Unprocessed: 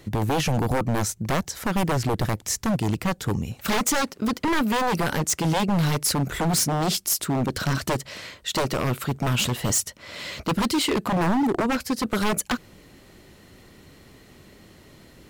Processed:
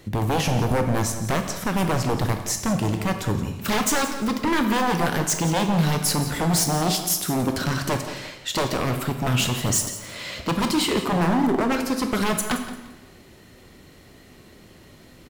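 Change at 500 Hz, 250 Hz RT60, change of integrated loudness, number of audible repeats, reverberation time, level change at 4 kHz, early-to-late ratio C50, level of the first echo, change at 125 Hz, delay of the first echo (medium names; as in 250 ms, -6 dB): +1.5 dB, 1.1 s, +1.0 dB, 2, 1.1 s, +1.0 dB, 7.0 dB, -13.5 dB, +1.0 dB, 173 ms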